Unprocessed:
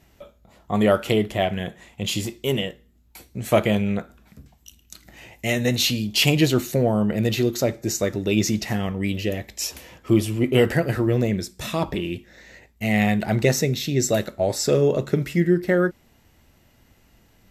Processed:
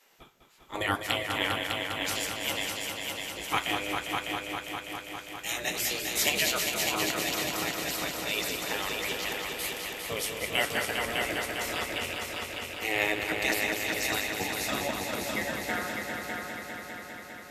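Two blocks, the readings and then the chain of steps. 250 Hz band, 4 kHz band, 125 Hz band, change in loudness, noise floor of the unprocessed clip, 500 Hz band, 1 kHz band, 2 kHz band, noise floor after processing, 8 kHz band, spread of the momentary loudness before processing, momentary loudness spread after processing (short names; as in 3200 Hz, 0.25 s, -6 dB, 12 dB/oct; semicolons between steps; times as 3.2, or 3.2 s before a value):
-15.5 dB, -2.0 dB, -20.0 dB, -7.5 dB, -58 dBFS, -12.5 dB, -1.5 dB, +0.5 dB, -46 dBFS, -2.5 dB, 10 LU, 9 LU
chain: spectral gate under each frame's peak -15 dB weak; multi-head echo 0.201 s, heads all three, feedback 69%, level -8 dB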